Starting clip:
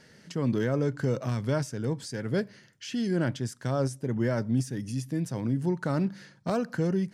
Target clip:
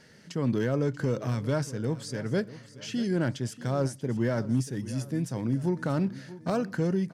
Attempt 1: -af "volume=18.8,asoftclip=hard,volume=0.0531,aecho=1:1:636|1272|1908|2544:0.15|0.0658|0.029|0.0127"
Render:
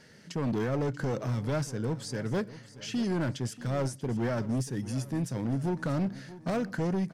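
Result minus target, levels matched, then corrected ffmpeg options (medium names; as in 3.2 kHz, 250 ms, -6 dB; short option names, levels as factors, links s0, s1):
overload inside the chain: distortion +20 dB
-af "volume=8.41,asoftclip=hard,volume=0.119,aecho=1:1:636|1272|1908|2544:0.15|0.0658|0.029|0.0127"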